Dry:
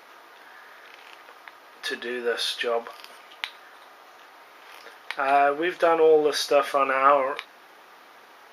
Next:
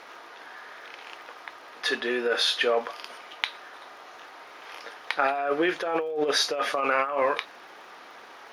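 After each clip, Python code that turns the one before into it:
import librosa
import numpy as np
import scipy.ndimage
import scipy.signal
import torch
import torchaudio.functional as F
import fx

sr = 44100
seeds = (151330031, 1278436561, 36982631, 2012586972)

y = scipy.signal.sosfilt(scipy.signal.butter(2, 8600.0, 'lowpass', fs=sr, output='sos'), x)
y = fx.over_compress(y, sr, threshold_db=-25.0, ratio=-1.0)
y = fx.dmg_crackle(y, sr, seeds[0], per_s=110.0, level_db=-50.0)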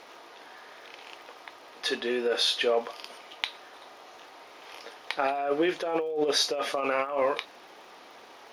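y = fx.peak_eq(x, sr, hz=1500.0, db=-7.5, octaves=1.1)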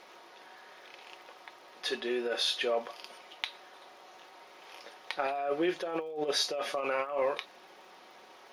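y = x + 0.36 * np.pad(x, (int(5.4 * sr / 1000.0), 0))[:len(x)]
y = F.gain(torch.from_numpy(y), -5.0).numpy()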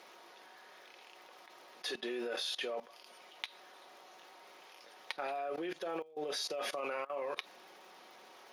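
y = scipy.signal.sosfilt(scipy.signal.butter(4, 120.0, 'highpass', fs=sr, output='sos'), x)
y = fx.high_shelf(y, sr, hz=7000.0, db=6.0)
y = fx.level_steps(y, sr, step_db=19)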